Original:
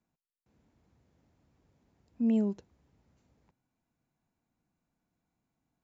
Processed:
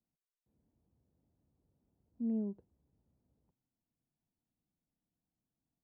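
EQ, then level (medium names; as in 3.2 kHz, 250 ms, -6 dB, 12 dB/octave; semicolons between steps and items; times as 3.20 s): Bessel low-pass 570 Hz, order 2; -7.5 dB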